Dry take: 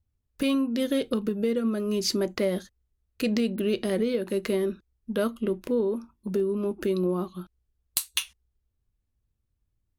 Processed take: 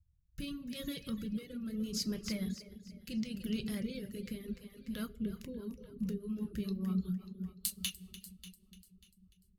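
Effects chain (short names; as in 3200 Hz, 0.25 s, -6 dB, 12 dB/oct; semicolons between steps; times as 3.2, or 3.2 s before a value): in parallel at +2 dB: limiter -21 dBFS, peak gain reduction 11.5 dB; on the sum: resonant low shelf 200 Hz +7 dB, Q 3; speed mistake 24 fps film run at 25 fps; passive tone stack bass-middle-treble 6-0-2; split-band echo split 310 Hz, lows 0.454 s, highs 0.295 s, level -10 dB; on a send at -5.5 dB: reverb RT60 0.95 s, pre-delay 4 ms; on the sum: rotary speaker horn 0.75 Hz, later 5 Hz, at 4.82; reverb removal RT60 0.8 s; gain +3.5 dB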